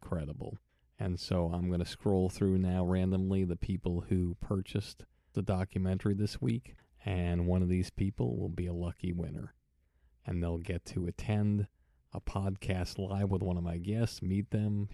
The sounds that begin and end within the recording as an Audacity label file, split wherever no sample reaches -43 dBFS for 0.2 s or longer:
1.000000	5.030000	sound
5.360000	6.700000	sound
7.060000	9.470000	sound
10.270000	11.650000	sound